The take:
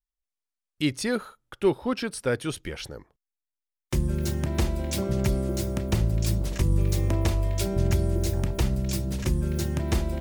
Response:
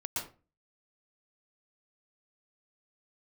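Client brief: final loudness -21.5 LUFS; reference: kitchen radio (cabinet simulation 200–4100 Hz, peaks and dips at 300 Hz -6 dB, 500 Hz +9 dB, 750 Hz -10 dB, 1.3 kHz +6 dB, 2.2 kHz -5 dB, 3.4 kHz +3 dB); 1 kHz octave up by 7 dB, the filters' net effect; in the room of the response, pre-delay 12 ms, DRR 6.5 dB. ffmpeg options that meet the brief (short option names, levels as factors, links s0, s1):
-filter_complex "[0:a]equalizer=f=1000:t=o:g=8.5,asplit=2[s0][s1];[1:a]atrim=start_sample=2205,adelay=12[s2];[s1][s2]afir=irnorm=-1:irlink=0,volume=0.335[s3];[s0][s3]amix=inputs=2:normalize=0,highpass=200,equalizer=f=300:t=q:w=4:g=-6,equalizer=f=500:t=q:w=4:g=9,equalizer=f=750:t=q:w=4:g=-10,equalizer=f=1300:t=q:w=4:g=6,equalizer=f=2200:t=q:w=4:g=-5,equalizer=f=3400:t=q:w=4:g=3,lowpass=f=4100:w=0.5412,lowpass=f=4100:w=1.3066,volume=2.11"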